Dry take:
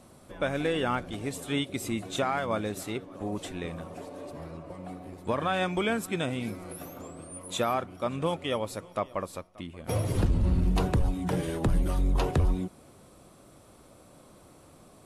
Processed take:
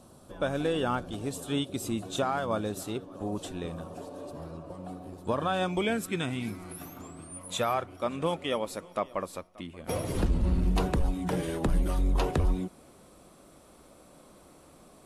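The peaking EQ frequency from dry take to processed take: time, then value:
peaking EQ -12 dB 0.43 oct
5.64 s 2.1 kHz
6.27 s 530 Hz
7.28 s 530 Hz
8.22 s 110 Hz

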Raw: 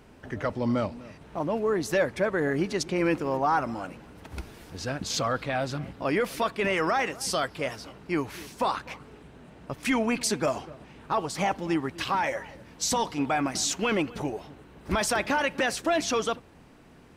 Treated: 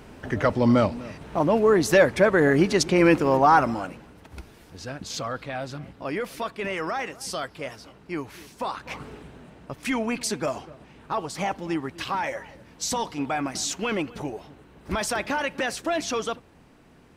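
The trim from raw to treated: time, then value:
3.62 s +7.5 dB
4.28 s -3.5 dB
8.77 s -3.5 dB
9.00 s +8.5 dB
9.72 s -1 dB

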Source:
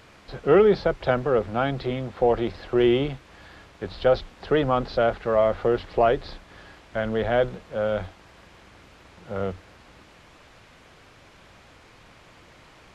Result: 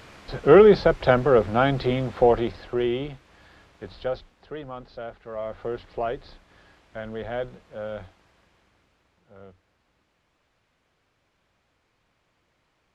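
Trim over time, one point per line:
2.17 s +4 dB
2.89 s -6 dB
3.91 s -6 dB
4.49 s -15 dB
5.22 s -15 dB
5.67 s -8.5 dB
8.04 s -8.5 dB
9.31 s -19 dB

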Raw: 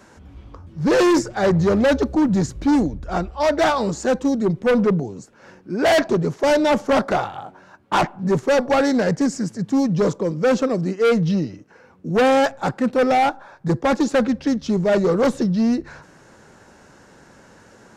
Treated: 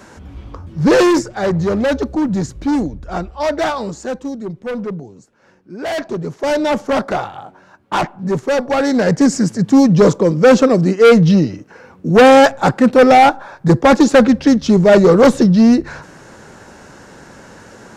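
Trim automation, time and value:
0.79 s +8 dB
1.31 s +0.5 dB
3.53 s +0.5 dB
4.45 s -6.5 dB
5.84 s -6.5 dB
6.61 s +1 dB
8.74 s +1 dB
9.33 s +9 dB

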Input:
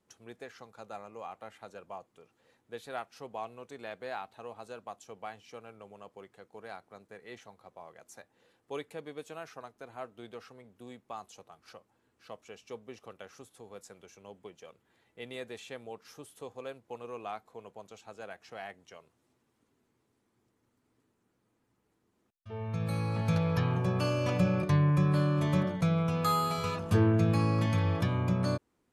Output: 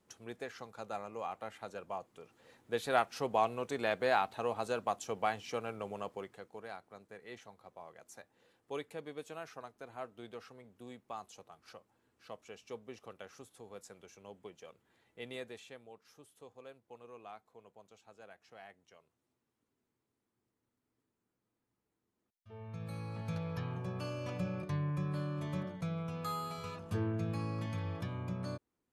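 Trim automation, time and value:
1.94 s +2.5 dB
2.99 s +9 dB
6.01 s +9 dB
6.72 s -2 dB
15.35 s -2 dB
15.87 s -10.5 dB

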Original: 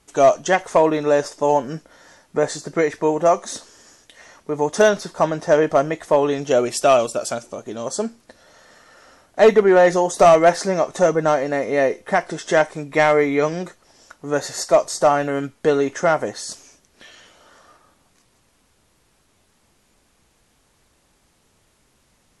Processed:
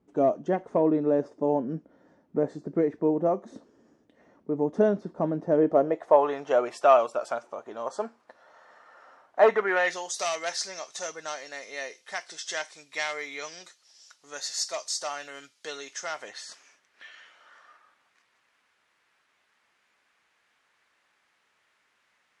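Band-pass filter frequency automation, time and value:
band-pass filter, Q 1.4
5.56 s 250 Hz
6.28 s 1 kHz
9.45 s 1 kHz
10.13 s 4.8 kHz
16.11 s 4.8 kHz
16.51 s 1.8 kHz

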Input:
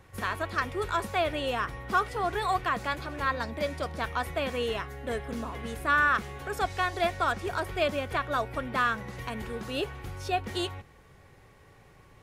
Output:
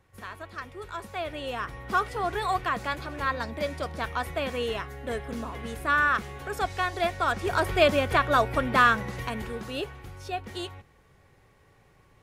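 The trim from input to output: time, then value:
0.82 s -9 dB
1.95 s +0.5 dB
7.21 s +0.5 dB
7.65 s +7 dB
8.89 s +7 dB
10.09 s -4 dB

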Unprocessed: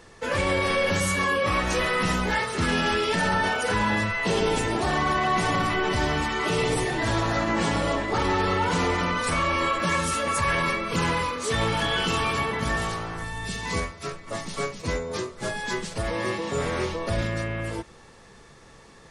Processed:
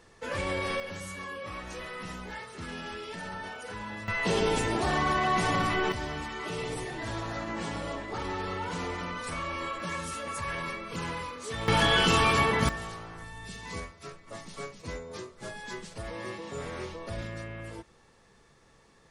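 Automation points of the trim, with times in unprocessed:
-7.5 dB
from 0.80 s -15.5 dB
from 4.08 s -3 dB
from 5.92 s -10.5 dB
from 11.68 s +2 dB
from 12.69 s -10.5 dB

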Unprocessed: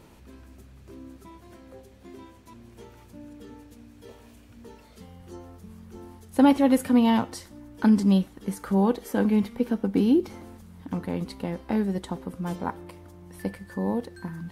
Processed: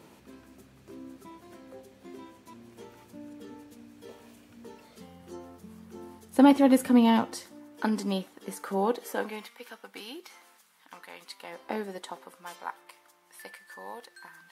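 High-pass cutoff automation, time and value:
7.01 s 160 Hz
7.85 s 380 Hz
9.02 s 380 Hz
9.57 s 1.3 kHz
11.38 s 1.3 kHz
11.70 s 420 Hz
12.54 s 1.1 kHz

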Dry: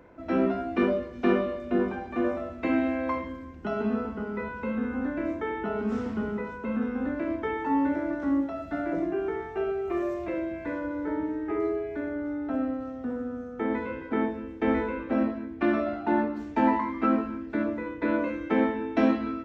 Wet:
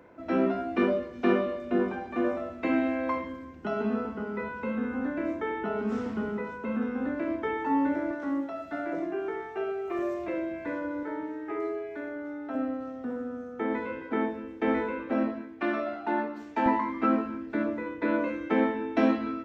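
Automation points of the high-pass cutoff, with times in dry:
high-pass 6 dB/octave
140 Hz
from 8.11 s 400 Hz
from 9.99 s 180 Hz
from 11.03 s 520 Hz
from 12.55 s 210 Hz
from 15.42 s 520 Hz
from 16.66 s 150 Hz

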